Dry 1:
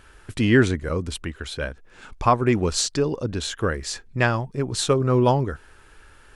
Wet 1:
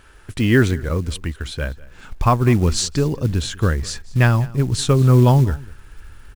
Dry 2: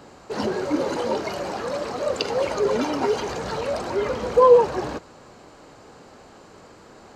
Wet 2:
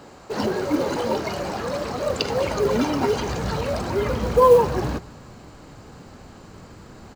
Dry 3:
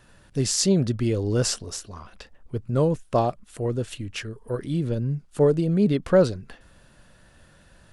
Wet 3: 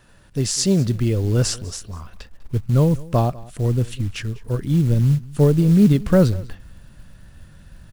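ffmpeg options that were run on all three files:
-filter_complex "[0:a]asubboost=boost=3.5:cutoff=230,acrusher=bits=7:mode=log:mix=0:aa=0.000001,asplit=2[s0][s1];[s1]aecho=0:1:198:0.0841[s2];[s0][s2]amix=inputs=2:normalize=0,volume=1.19"

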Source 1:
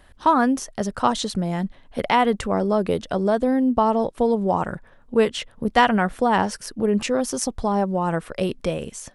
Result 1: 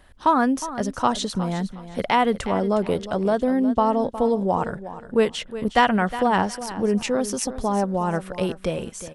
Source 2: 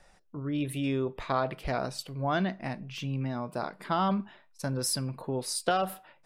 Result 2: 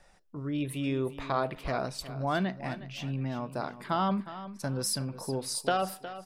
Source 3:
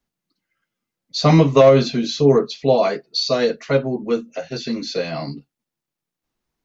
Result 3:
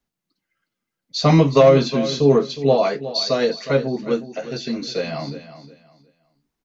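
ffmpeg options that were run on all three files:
-af "aecho=1:1:362|724|1086:0.211|0.0528|0.0132,volume=0.891"

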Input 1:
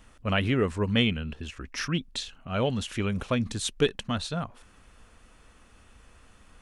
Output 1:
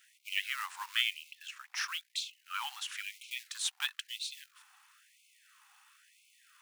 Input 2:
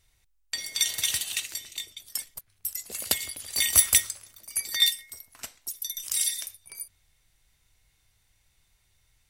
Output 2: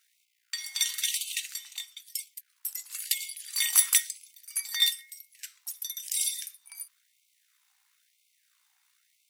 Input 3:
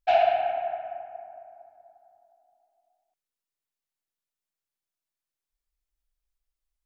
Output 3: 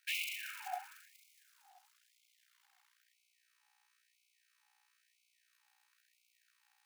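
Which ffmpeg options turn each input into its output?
-af "aeval=exprs='val(0)+0.00501*(sin(2*PI*60*n/s)+sin(2*PI*2*60*n/s)/2+sin(2*PI*3*60*n/s)/3+sin(2*PI*4*60*n/s)/4+sin(2*PI*5*60*n/s)/5)':c=same,acrusher=bits=5:mode=log:mix=0:aa=0.000001,afftfilt=real='re*gte(b*sr/1024,720*pow(2100/720,0.5+0.5*sin(2*PI*1*pts/sr)))':imag='im*gte(b*sr/1024,720*pow(2100/720,0.5+0.5*sin(2*PI*1*pts/sr)))':win_size=1024:overlap=0.75,volume=0.75"

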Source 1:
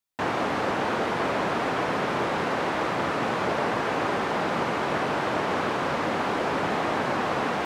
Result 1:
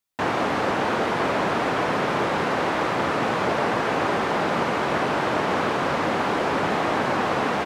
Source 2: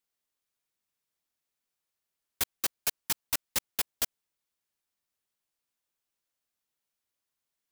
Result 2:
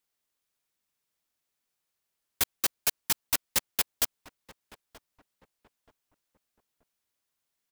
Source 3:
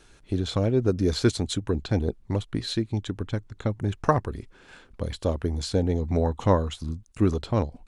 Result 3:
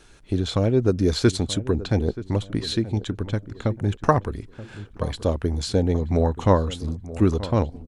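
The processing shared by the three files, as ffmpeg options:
-filter_complex "[0:a]asplit=2[s0][s1];[s1]adelay=929,lowpass=f=1200:p=1,volume=0.178,asplit=2[s2][s3];[s3]adelay=929,lowpass=f=1200:p=1,volume=0.38,asplit=2[s4][s5];[s5]adelay=929,lowpass=f=1200:p=1,volume=0.38[s6];[s0][s2][s4][s6]amix=inputs=4:normalize=0,volume=1.41"

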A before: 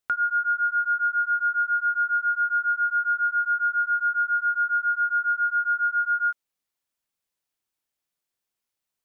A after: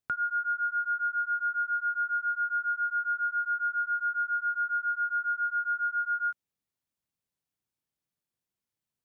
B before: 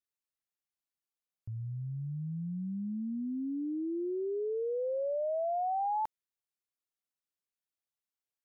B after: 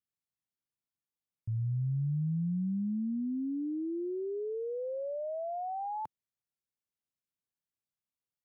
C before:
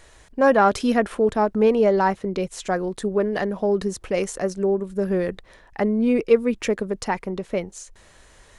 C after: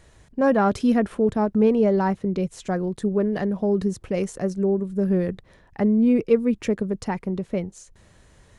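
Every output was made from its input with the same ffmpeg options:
-af "equalizer=f=130:w=0.5:g=13,volume=0.473"

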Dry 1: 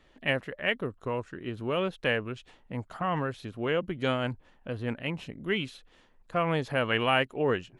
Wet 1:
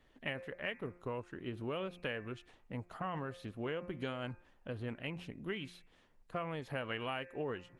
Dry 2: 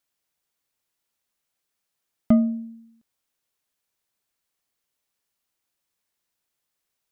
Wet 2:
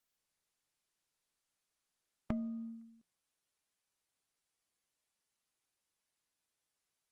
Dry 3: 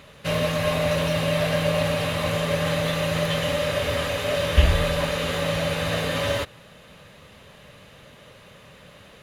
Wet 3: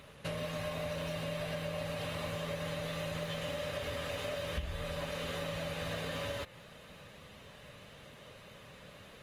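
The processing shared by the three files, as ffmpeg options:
-af "bandreject=f=176.2:t=h:w=4,bandreject=f=352.4:t=h:w=4,bandreject=f=528.6:t=h:w=4,bandreject=f=704.8:t=h:w=4,bandreject=f=881:t=h:w=4,bandreject=f=1057.2:t=h:w=4,bandreject=f=1233.4:t=h:w=4,bandreject=f=1409.6:t=h:w=4,bandreject=f=1585.8:t=h:w=4,bandreject=f=1762:t=h:w=4,bandreject=f=1938.2:t=h:w=4,bandreject=f=2114.4:t=h:w=4,bandreject=f=2290.6:t=h:w=4,bandreject=f=2466.8:t=h:w=4,bandreject=f=2643:t=h:w=4,acompressor=threshold=0.0316:ratio=8,volume=0.562" -ar 48000 -c:a libopus -b:a 24k

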